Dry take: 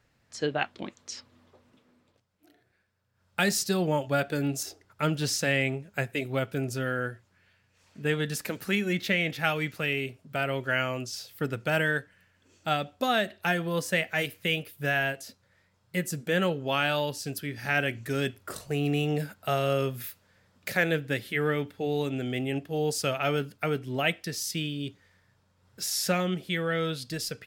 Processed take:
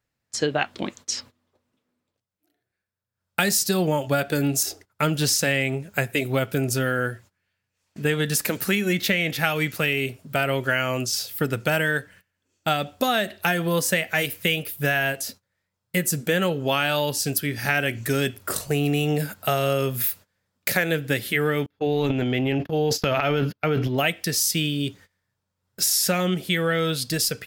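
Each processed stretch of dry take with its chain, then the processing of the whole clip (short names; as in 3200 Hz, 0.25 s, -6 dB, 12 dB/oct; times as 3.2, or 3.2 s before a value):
21.66–23.98 transient shaper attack -2 dB, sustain +12 dB + running mean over 5 samples + gate -35 dBFS, range -36 dB
whole clip: gate -53 dBFS, range -21 dB; high shelf 7600 Hz +10 dB; compressor 5:1, threshold -27 dBFS; gain +8.5 dB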